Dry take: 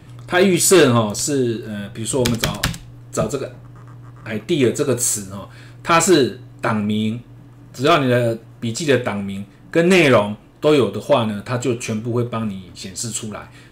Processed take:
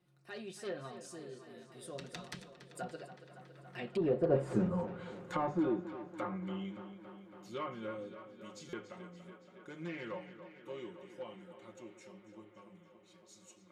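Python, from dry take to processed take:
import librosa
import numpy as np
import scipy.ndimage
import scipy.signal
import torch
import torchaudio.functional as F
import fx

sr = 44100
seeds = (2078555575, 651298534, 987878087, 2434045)

p1 = fx.doppler_pass(x, sr, speed_mps=41, closest_m=3.1, pass_at_s=4.58)
p2 = fx.highpass(p1, sr, hz=150.0, slope=6)
p3 = fx.hum_notches(p2, sr, base_hz=50, count=4)
p4 = p3 + 0.62 * np.pad(p3, (int(5.6 * sr / 1000.0), 0))[:len(p3)]
p5 = 10.0 ** (-34.5 / 20.0) * (np.abs((p4 / 10.0 ** (-34.5 / 20.0) + 3.0) % 4.0 - 2.0) - 1.0)
p6 = p4 + (p5 * librosa.db_to_amplitude(-8.0))
p7 = fx.env_lowpass_down(p6, sr, base_hz=840.0, full_db=-34.5)
p8 = fx.echo_tape(p7, sr, ms=282, feedback_pct=85, wet_db=-11.0, lp_hz=5900.0, drive_db=32.0, wow_cents=34)
p9 = fx.buffer_glitch(p8, sr, at_s=(8.69,), block=256, repeats=6)
y = p9 * librosa.db_to_amplitude(2.0)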